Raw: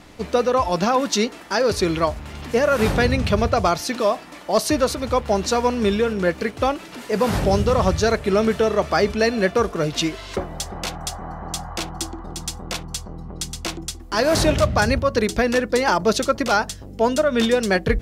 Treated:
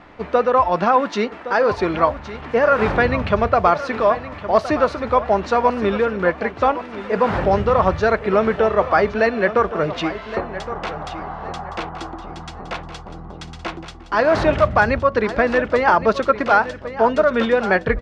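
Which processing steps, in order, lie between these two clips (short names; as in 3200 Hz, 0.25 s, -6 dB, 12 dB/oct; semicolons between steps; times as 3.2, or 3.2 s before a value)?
LPF 1400 Hz 12 dB/oct; tilt shelf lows -7 dB, about 700 Hz; feedback echo 1.116 s, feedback 30%, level -13 dB; gain +4 dB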